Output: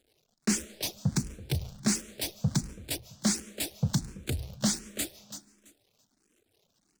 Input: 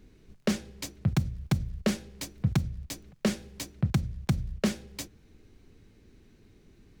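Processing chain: zero-crossing step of -36.5 dBFS; reverb removal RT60 1.2 s; gate -36 dBFS, range -35 dB; ten-band EQ 1000 Hz -9 dB, 2000 Hz -6 dB, 8000 Hz +5 dB, 16000 Hz +4 dB; overdrive pedal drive 24 dB, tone 4700 Hz, clips at -14 dBFS; in parallel at -5 dB: hard clip -25 dBFS, distortion -8 dB; on the sum: feedback echo 0.333 s, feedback 22%, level -13 dB; on a send at -18.5 dB: reverb RT60 1.3 s, pre-delay 0.105 s; on the sum: endless phaser +1.4 Hz; gain -3 dB

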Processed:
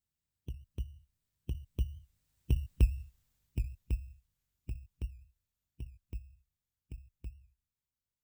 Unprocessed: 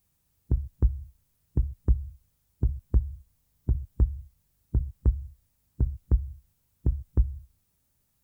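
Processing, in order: FFT order left unsorted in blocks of 16 samples; Doppler pass-by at 2.79, 18 m/s, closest 8.5 m; record warp 78 rpm, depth 100 cents; gain -2.5 dB

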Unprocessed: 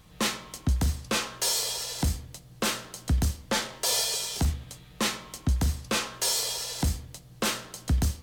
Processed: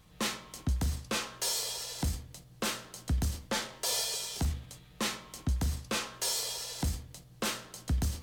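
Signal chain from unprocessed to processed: sustainer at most 130 dB/s; gain -5.5 dB

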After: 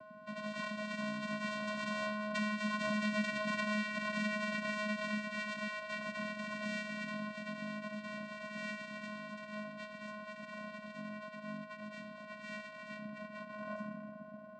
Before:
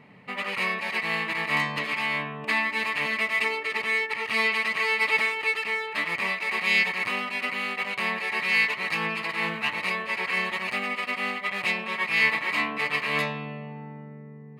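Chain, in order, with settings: tape stop at the end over 2.13 s; Doppler pass-by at 3.34, 20 m/s, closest 10 m; reverb RT60 2.0 s, pre-delay 3 ms, DRR 7 dB; whine 470 Hz -47 dBFS; half-wave rectifier; vocoder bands 8, square 211 Hz; compressor 3:1, threshold -43 dBFS, peak gain reduction 15 dB; gain +6.5 dB

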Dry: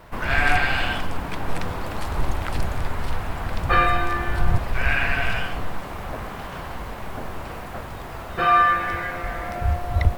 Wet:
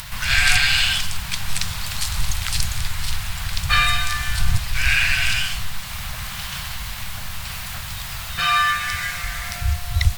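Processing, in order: dynamic EQ 7000 Hz, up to +6 dB, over -46 dBFS, Q 0.88; in parallel at +2.5 dB: upward compressor, threshold -21 dBFS; on the sum: EQ curve 130 Hz 0 dB, 210 Hz -8 dB, 300 Hz -28 dB, 740 Hz -11 dB, 4100 Hz +13 dB; gain -6.5 dB

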